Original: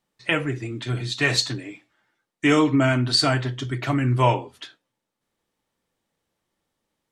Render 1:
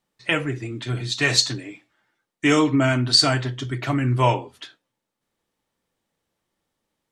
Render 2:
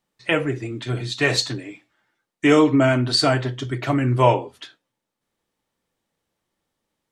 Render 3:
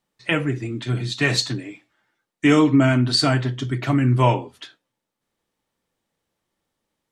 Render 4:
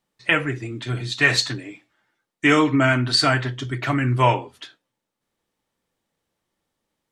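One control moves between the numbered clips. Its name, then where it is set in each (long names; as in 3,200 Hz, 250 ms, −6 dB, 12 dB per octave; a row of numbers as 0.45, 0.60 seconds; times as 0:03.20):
dynamic equaliser, frequency: 6,100, 510, 200, 1,700 Hertz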